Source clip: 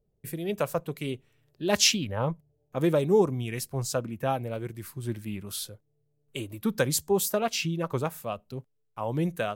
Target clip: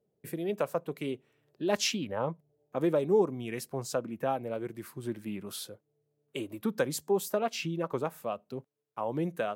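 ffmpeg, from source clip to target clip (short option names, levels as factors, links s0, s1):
-filter_complex "[0:a]highpass=220,highshelf=f=2200:g=-9.5,asplit=2[s0][s1];[s1]acompressor=threshold=0.0158:ratio=6,volume=1.26[s2];[s0][s2]amix=inputs=2:normalize=0,volume=0.631"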